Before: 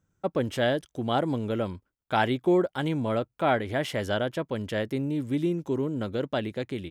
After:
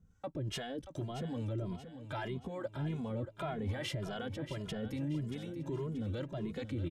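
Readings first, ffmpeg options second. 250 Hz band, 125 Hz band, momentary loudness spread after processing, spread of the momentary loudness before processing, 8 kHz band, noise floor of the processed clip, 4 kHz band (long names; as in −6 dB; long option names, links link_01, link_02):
−11.0 dB, −5.0 dB, 4 LU, 6 LU, −5.0 dB, −60 dBFS, −9.5 dB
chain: -filter_complex "[0:a]aemphasis=mode=reproduction:type=bsi,acompressor=threshold=-26dB:ratio=6,acrossover=split=570[link_01][link_02];[link_01]aeval=exprs='val(0)*(1-0.7/2+0.7/2*cos(2*PI*2.5*n/s))':channel_layout=same[link_03];[link_02]aeval=exprs='val(0)*(1-0.7/2-0.7/2*cos(2*PI*2.5*n/s))':channel_layout=same[link_04];[link_03][link_04]amix=inputs=2:normalize=0,highshelf=frequency=3900:gain=11.5,alimiter=level_in=8dB:limit=-24dB:level=0:latency=1:release=13,volume=-8dB,aecho=1:1:631|1262|1893|2524:0.282|0.118|0.0497|0.0209,asplit=2[link_05][link_06];[link_06]adelay=2.4,afreqshift=1.7[link_07];[link_05][link_07]amix=inputs=2:normalize=1,volume=4.5dB"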